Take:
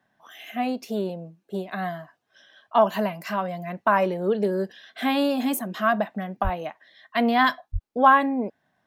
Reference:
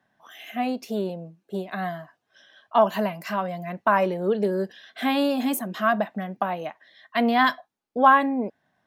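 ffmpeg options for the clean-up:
ffmpeg -i in.wav -filter_complex "[0:a]asplit=3[link_01][link_02][link_03];[link_01]afade=type=out:start_time=6.43:duration=0.02[link_04];[link_02]highpass=frequency=140:width=0.5412,highpass=frequency=140:width=1.3066,afade=type=in:start_time=6.43:duration=0.02,afade=type=out:start_time=6.55:duration=0.02[link_05];[link_03]afade=type=in:start_time=6.55:duration=0.02[link_06];[link_04][link_05][link_06]amix=inputs=3:normalize=0,asplit=3[link_07][link_08][link_09];[link_07]afade=type=out:start_time=7.72:duration=0.02[link_10];[link_08]highpass=frequency=140:width=0.5412,highpass=frequency=140:width=1.3066,afade=type=in:start_time=7.72:duration=0.02,afade=type=out:start_time=7.84:duration=0.02[link_11];[link_09]afade=type=in:start_time=7.84:duration=0.02[link_12];[link_10][link_11][link_12]amix=inputs=3:normalize=0" out.wav

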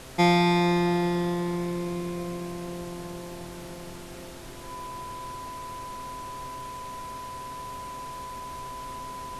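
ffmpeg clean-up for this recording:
ffmpeg -i in.wav -af "adeclick=threshold=4,bandreject=frequency=131.3:width_type=h:width=4,bandreject=frequency=262.6:width_type=h:width=4,bandreject=frequency=393.9:width_type=h:width=4,bandreject=frequency=525.2:width_type=h:width=4,bandreject=frequency=656.5:width_type=h:width=4,bandreject=frequency=1000:width=30,afftdn=noise_reduction=30:noise_floor=-40" out.wav

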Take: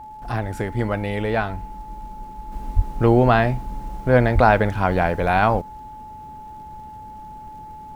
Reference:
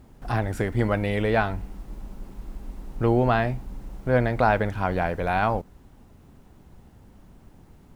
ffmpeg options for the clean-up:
ffmpeg -i in.wav -filter_complex "[0:a]adeclick=threshold=4,bandreject=frequency=860:width=30,asplit=3[link_01][link_02][link_03];[link_01]afade=type=out:start_time=2.75:duration=0.02[link_04];[link_02]highpass=frequency=140:width=0.5412,highpass=frequency=140:width=1.3066,afade=type=in:start_time=2.75:duration=0.02,afade=type=out:start_time=2.87:duration=0.02[link_05];[link_03]afade=type=in:start_time=2.87:duration=0.02[link_06];[link_04][link_05][link_06]amix=inputs=3:normalize=0,asplit=3[link_07][link_08][link_09];[link_07]afade=type=out:start_time=4.34:duration=0.02[link_10];[link_08]highpass=frequency=140:width=0.5412,highpass=frequency=140:width=1.3066,afade=type=in:start_time=4.34:duration=0.02,afade=type=out:start_time=4.46:duration=0.02[link_11];[link_09]afade=type=in:start_time=4.46:duration=0.02[link_12];[link_10][link_11][link_12]amix=inputs=3:normalize=0,asetnsamples=nb_out_samples=441:pad=0,asendcmd='2.52 volume volume -5.5dB',volume=0dB" out.wav

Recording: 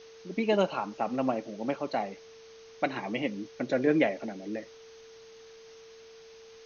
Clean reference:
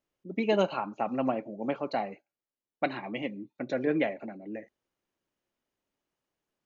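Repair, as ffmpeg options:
ffmpeg -i in.wav -af "bandreject=frequency=450:width=30,afwtdn=0.0022,asetnsamples=nb_out_samples=441:pad=0,asendcmd='2.96 volume volume -3dB',volume=0dB" out.wav

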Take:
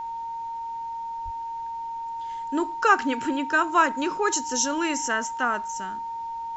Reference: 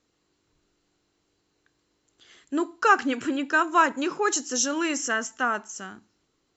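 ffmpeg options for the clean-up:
ffmpeg -i in.wav -filter_complex "[0:a]bandreject=frequency=920:width=30,asplit=3[link_01][link_02][link_03];[link_01]afade=type=out:start_time=1.24:duration=0.02[link_04];[link_02]highpass=frequency=140:width=0.5412,highpass=frequency=140:width=1.3066,afade=type=in:start_time=1.24:duration=0.02,afade=type=out:start_time=1.36:duration=0.02[link_05];[link_03]afade=type=in:start_time=1.36:duration=0.02[link_06];[link_04][link_05][link_06]amix=inputs=3:normalize=0,agate=range=-21dB:threshold=-25dB" out.wav

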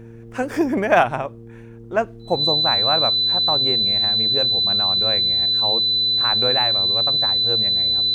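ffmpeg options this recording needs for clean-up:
ffmpeg -i in.wav -af "bandreject=frequency=115.2:width_type=h:width=4,bandreject=frequency=230.4:width_type=h:width=4,bandreject=frequency=345.6:width_type=h:width=4,bandreject=frequency=460.8:width_type=h:width=4,bandreject=frequency=4000:width=30" out.wav

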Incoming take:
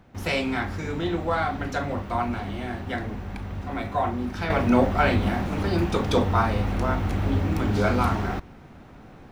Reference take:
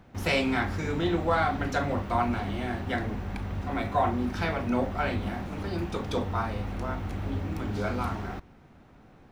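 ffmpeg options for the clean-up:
ffmpeg -i in.wav -af "asetnsamples=nb_out_samples=441:pad=0,asendcmd='4.5 volume volume -8dB',volume=0dB" out.wav

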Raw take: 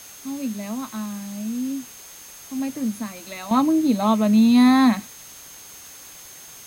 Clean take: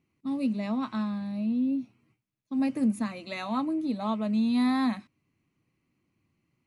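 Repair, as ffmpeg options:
ffmpeg -i in.wav -af "bandreject=frequency=6400:width=30,afwtdn=0.0071,asetnsamples=nb_out_samples=441:pad=0,asendcmd='3.51 volume volume -10.5dB',volume=0dB" out.wav

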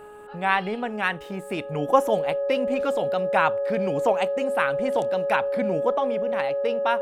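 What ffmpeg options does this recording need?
ffmpeg -i in.wav -af "bandreject=frequency=418.6:width_type=h:width=4,bandreject=frequency=837.2:width_type=h:width=4,bandreject=frequency=1255.8:width_type=h:width=4,bandreject=frequency=1674.4:width_type=h:width=4,bandreject=frequency=560:width=30" out.wav

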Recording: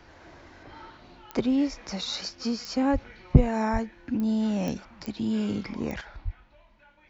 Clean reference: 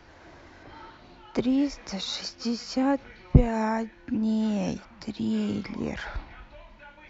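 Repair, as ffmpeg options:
ffmpeg -i in.wav -filter_complex "[0:a]adeclick=threshold=4,asplit=3[link_01][link_02][link_03];[link_01]afade=type=out:start_time=2.92:duration=0.02[link_04];[link_02]highpass=frequency=140:width=0.5412,highpass=frequency=140:width=1.3066,afade=type=in:start_time=2.92:duration=0.02,afade=type=out:start_time=3.04:duration=0.02[link_05];[link_03]afade=type=in:start_time=3.04:duration=0.02[link_06];[link_04][link_05][link_06]amix=inputs=3:normalize=0,asplit=3[link_07][link_08][link_09];[link_07]afade=type=out:start_time=3.72:duration=0.02[link_10];[link_08]highpass=frequency=140:width=0.5412,highpass=frequency=140:width=1.3066,afade=type=in:start_time=3.72:duration=0.02,afade=type=out:start_time=3.84:duration=0.02[link_11];[link_09]afade=type=in:start_time=3.84:duration=0.02[link_12];[link_10][link_11][link_12]amix=inputs=3:normalize=0,asplit=3[link_13][link_14][link_15];[link_13]afade=type=out:start_time=6.24:duration=0.02[link_16];[link_14]highpass=frequency=140:width=0.5412,highpass=frequency=140:width=1.3066,afade=type=in:start_time=6.24:duration=0.02,afade=type=out:start_time=6.36:duration=0.02[link_17];[link_15]afade=type=in:start_time=6.36:duration=0.02[link_18];[link_16][link_17][link_18]amix=inputs=3:normalize=0,asetnsamples=nb_out_samples=441:pad=0,asendcmd='6.01 volume volume 9.5dB',volume=0dB" out.wav

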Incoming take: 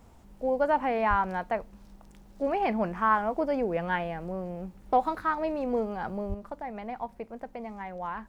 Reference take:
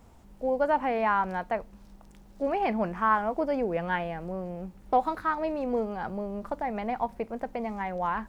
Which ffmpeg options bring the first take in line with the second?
ffmpeg -i in.wav -filter_complex "[0:a]asplit=3[link_01][link_02][link_03];[link_01]afade=type=out:start_time=1.09:duration=0.02[link_04];[link_02]highpass=frequency=140:width=0.5412,highpass=frequency=140:width=1.3066,afade=type=in:start_time=1.09:duration=0.02,afade=type=out:start_time=1.21:duration=0.02[link_05];[link_03]afade=type=in:start_time=1.21:duration=0.02[link_06];[link_04][link_05][link_06]amix=inputs=3:normalize=0,asplit=3[link_07][link_08][link_09];[link_07]afade=type=out:start_time=6.28:duration=0.02[link_10];[link_08]highpass=frequency=140:width=0.5412,highpass=frequency=140:width=1.3066,afade=type=in:start_time=6.28:duration=0.02,afade=type=out:start_time=6.4:duration=0.02[link_11];[link_09]afade=type=in:start_time=6.4:duration=0.02[link_12];[link_10][link_11][link_12]amix=inputs=3:normalize=0,asetnsamples=nb_out_samples=441:pad=0,asendcmd='6.34 volume volume 6dB',volume=0dB" out.wav

